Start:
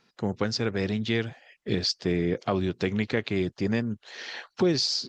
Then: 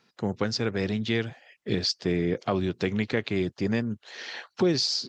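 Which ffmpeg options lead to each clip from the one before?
-af "highpass=61"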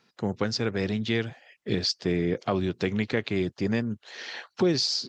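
-af anull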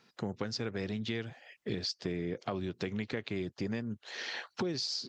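-af "acompressor=threshold=-35dB:ratio=3"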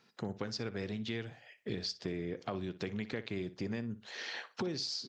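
-filter_complex "[0:a]asplit=2[a][b];[b]adelay=60,lowpass=f=4.5k:p=1,volume=-14.5dB,asplit=2[c][d];[d]adelay=60,lowpass=f=4.5k:p=1,volume=0.26,asplit=2[e][f];[f]adelay=60,lowpass=f=4.5k:p=1,volume=0.26[g];[a][c][e][g]amix=inputs=4:normalize=0,volume=-2.5dB"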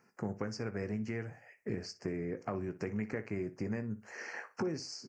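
-filter_complex "[0:a]asuperstop=centerf=3600:order=4:qfactor=1,asplit=2[a][b];[b]adelay=19,volume=-11.5dB[c];[a][c]amix=inputs=2:normalize=0,volume=1dB"

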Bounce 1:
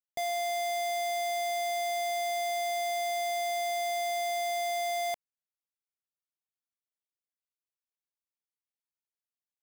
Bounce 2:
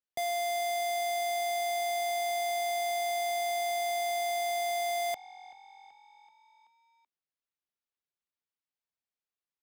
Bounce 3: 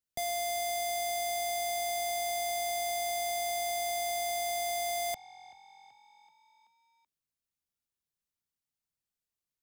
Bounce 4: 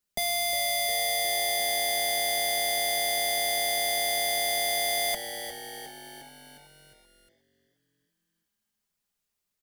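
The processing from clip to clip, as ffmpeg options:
-filter_complex "[0:a]asplit=6[a][b][c][d][e][f];[b]adelay=381,afreqshift=45,volume=-19.5dB[g];[c]adelay=762,afreqshift=90,volume=-23.9dB[h];[d]adelay=1143,afreqshift=135,volume=-28.4dB[i];[e]adelay=1524,afreqshift=180,volume=-32.8dB[j];[f]adelay=1905,afreqshift=225,volume=-37.2dB[k];[a][g][h][i][j][k]amix=inputs=6:normalize=0,acrossover=split=180|5800[l][m][n];[n]acrusher=bits=6:mix=0:aa=0.000001[o];[l][m][o]amix=inputs=3:normalize=0"
-af "bass=f=250:g=12,treble=f=4k:g=7,volume=-3dB"
-filter_complex "[0:a]aecho=1:1:4.9:0.73,asplit=2[a][b];[b]asplit=6[c][d][e][f][g][h];[c]adelay=357,afreqshift=-110,volume=-11dB[i];[d]adelay=714,afreqshift=-220,volume=-15.9dB[j];[e]adelay=1071,afreqshift=-330,volume=-20.8dB[k];[f]adelay=1428,afreqshift=-440,volume=-25.6dB[l];[g]adelay=1785,afreqshift=-550,volume=-30.5dB[m];[h]adelay=2142,afreqshift=-660,volume=-35.4dB[n];[i][j][k][l][m][n]amix=inputs=6:normalize=0[o];[a][o]amix=inputs=2:normalize=0,volume=6dB"

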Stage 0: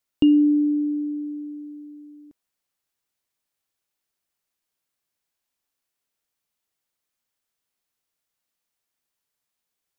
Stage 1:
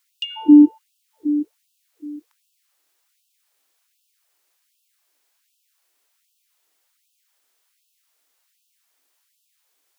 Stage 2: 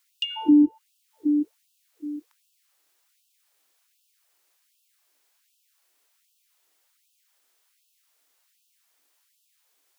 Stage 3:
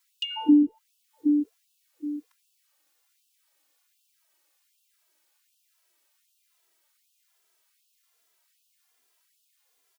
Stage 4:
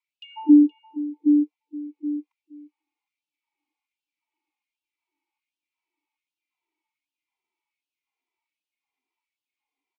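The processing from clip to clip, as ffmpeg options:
-af "bandreject=f=101.2:t=h:w=4,bandreject=f=202.4:t=h:w=4,bandreject=f=303.6:t=h:w=4,bandreject=f=404.8:t=h:w=4,bandreject=f=506:t=h:w=4,bandreject=f=607.2:t=h:w=4,bandreject=f=708.4:t=h:w=4,bandreject=f=809.6:t=h:w=4,bandreject=f=910.8:t=h:w=4,bandreject=f=1.012k:t=h:w=4,bandreject=f=1.1132k:t=h:w=4,bandreject=f=1.2144k:t=h:w=4,bandreject=f=1.3156k:t=h:w=4,bandreject=f=1.4168k:t=h:w=4,bandreject=f=1.518k:t=h:w=4,bandreject=f=1.6192k:t=h:w=4,bandreject=f=1.7204k:t=h:w=4,bandreject=f=1.8216k:t=h:w=4,bandreject=f=1.9228k:t=h:w=4,bandreject=f=2.024k:t=h:w=4,bandreject=f=2.1252k:t=h:w=4,bandreject=f=2.2264k:t=h:w=4,bandreject=f=2.3276k:t=h:w=4,bandreject=f=2.4288k:t=h:w=4,bandreject=f=2.53k:t=h:w=4,bandreject=f=2.6312k:t=h:w=4,bandreject=f=2.7324k:t=h:w=4,bandreject=f=2.8336k:t=h:w=4,bandreject=f=2.9348k:t=h:w=4,acontrast=89,afftfilt=real='re*gte(b*sr/1024,230*pow(2600/230,0.5+0.5*sin(2*PI*1.3*pts/sr)))':imag='im*gte(b*sr/1024,230*pow(2600/230,0.5+0.5*sin(2*PI*1.3*pts/sr)))':win_size=1024:overlap=0.75,volume=6dB"
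-filter_complex "[0:a]acrossover=split=220[a][b];[b]acompressor=threshold=-21dB:ratio=6[c];[a][c]amix=inputs=2:normalize=0"
-filter_complex "[0:a]asplit=2[a][b];[b]adelay=2.6,afreqshift=-1.2[c];[a][c]amix=inputs=2:normalize=1,volume=1.5dB"
-filter_complex "[0:a]asplit=3[a][b][c];[a]bandpass=f=300:t=q:w=8,volume=0dB[d];[b]bandpass=f=870:t=q:w=8,volume=-6dB[e];[c]bandpass=f=2.24k:t=q:w=8,volume=-9dB[f];[d][e][f]amix=inputs=3:normalize=0,aecho=1:1:471:0.15,volume=5dB"

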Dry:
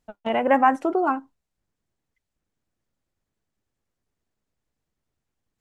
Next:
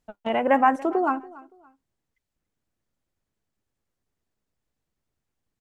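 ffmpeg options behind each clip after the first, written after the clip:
-af "aecho=1:1:284|568:0.0891|0.0258,volume=-1dB"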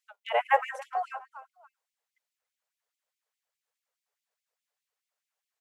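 -af "afftfilt=real='re*gte(b*sr/1024,390*pow(2100/390,0.5+0.5*sin(2*PI*4.8*pts/sr)))':imag='im*gte(b*sr/1024,390*pow(2100/390,0.5+0.5*sin(2*PI*4.8*pts/sr)))':win_size=1024:overlap=0.75"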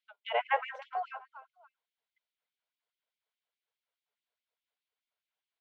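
-af "highpass=460,equalizer=f=550:t=q:w=4:g=-8,equalizer=f=810:t=q:w=4:g=-8,equalizer=f=1.2k:t=q:w=4:g=-9,equalizer=f=1.8k:t=q:w=4:g=-9,equalizer=f=2.6k:t=q:w=4:g=-5,lowpass=f=3.6k:w=0.5412,lowpass=f=3.6k:w=1.3066,volume=3.5dB"

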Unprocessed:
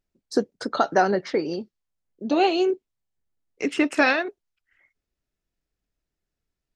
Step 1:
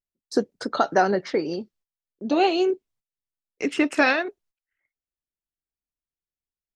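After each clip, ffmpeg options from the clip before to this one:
-af "agate=range=-17dB:threshold=-58dB:ratio=16:detection=peak"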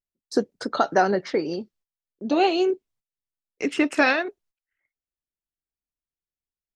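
-af anull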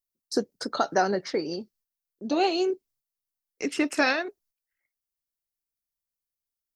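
-af "aexciter=amount=2.3:drive=5.4:freq=4.4k,volume=-4dB"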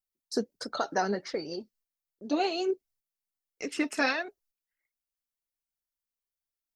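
-af "flanger=delay=1.3:depth=3.4:regen=39:speed=1.4:shape=sinusoidal"

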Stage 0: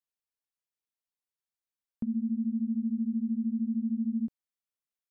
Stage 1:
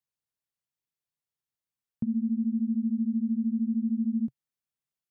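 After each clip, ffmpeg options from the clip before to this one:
-af "equalizer=f=130:t=o:w=1:g=12,volume=-1dB"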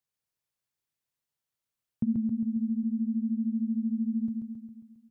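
-af "aecho=1:1:135|270|405|540|675|810|945|1080:0.596|0.345|0.2|0.116|0.0674|0.0391|0.0227|0.0132,volume=1.5dB"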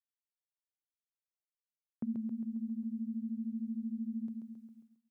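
-af "highpass=360,agate=range=-33dB:threshold=-56dB:ratio=3:detection=peak"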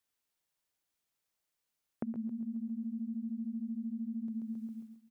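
-filter_complex "[0:a]acompressor=threshold=-47dB:ratio=6,asplit=2[a][b];[b]adelay=116.6,volume=-11dB,highshelf=f=4k:g=-2.62[c];[a][c]amix=inputs=2:normalize=0,volume=10.5dB"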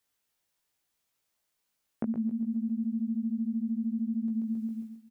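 -filter_complex "[0:a]asplit=2[a][b];[b]adelay=18,volume=-4.5dB[c];[a][c]amix=inputs=2:normalize=0,volume=4dB"

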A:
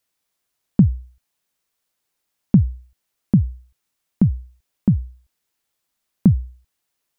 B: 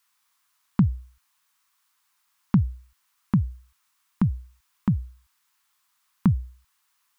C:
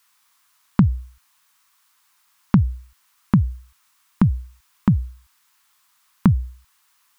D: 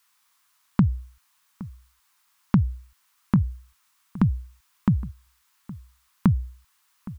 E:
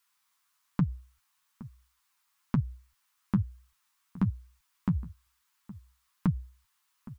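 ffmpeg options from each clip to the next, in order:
-af "lowshelf=f=770:t=q:w=3:g=-11,volume=5.5dB"
-af "acompressor=threshold=-21dB:ratio=2,volume=8dB"
-filter_complex "[0:a]asplit=2[a][b];[b]adelay=816.3,volume=-18dB,highshelf=f=4k:g=-18.4[c];[a][c]amix=inputs=2:normalize=0,volume=-4dB"
-af "flanger=delay=4.7:depth=8.7:regen=30:speed=1.1:shape=triangular,volume=-4dB"

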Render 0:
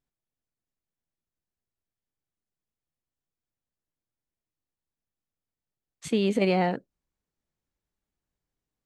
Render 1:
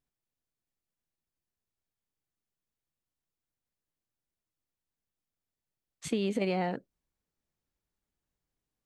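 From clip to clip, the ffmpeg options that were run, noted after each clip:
-af "acompressor=threshold=-26dB:ratio=4,volume=-1dB"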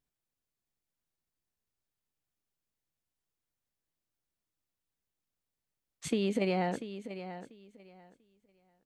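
-af "aecho=1:1:691|1382|2073:0.251|0.0502|0.01"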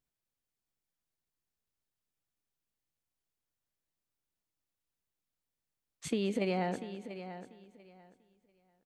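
-filter_complex "[0:a]asplit=2[a][b];[b]adelay=210,lowpass=f=5k:p=1,volume=-18dB,asplit=2[c][d];[d]adelay=210,lowpass=f=5k:p=1,volume=0.38,asplit=2[e][f];[f]adelay=210,lowpass=f=5k:p=1,volume=0.38[g];[a][c][e][g]amix=inputs=4:normalize=0,volume=-2dB"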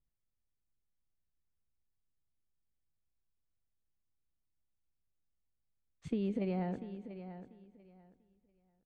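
-af "aemphasis=mode=reproduction:type=riaa,volume=-8.5dB"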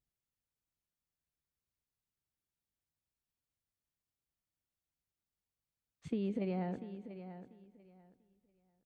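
-af "highpass=f=73:p=1,volume=-1dB"

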